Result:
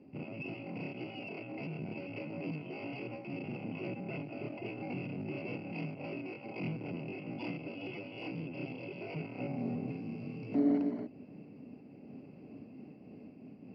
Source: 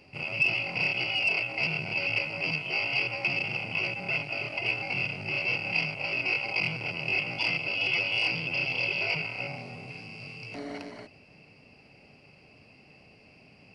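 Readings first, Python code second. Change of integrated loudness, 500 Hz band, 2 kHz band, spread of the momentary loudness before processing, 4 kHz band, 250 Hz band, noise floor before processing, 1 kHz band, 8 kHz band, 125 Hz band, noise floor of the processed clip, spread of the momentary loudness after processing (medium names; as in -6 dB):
-12.0 dB, -2.5 dB, -21.0 dB, 14 LU, -23.0 dB, +6.5 dB, -57 dBFS, -9.0 dB, no reading, -2.5 dB, -53 dBFS, 14 LU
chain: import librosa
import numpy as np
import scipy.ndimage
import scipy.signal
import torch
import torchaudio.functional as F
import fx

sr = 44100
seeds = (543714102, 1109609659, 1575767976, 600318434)

p1 = fx.rider(x, sr, range_db=10, speed_s=0.5)
p2 = x + (p1 * 10.0 ** (0.0 / 20.0))
p3 = fx.bandpass_q(p2, sr, hz=260.0, q=2.5)
p4 = fx.am_noise(p3, sr, seeds[0], hz=5.7, depth_pct=60)
y = p4 * 10.0 ** (3.5 / 20.0)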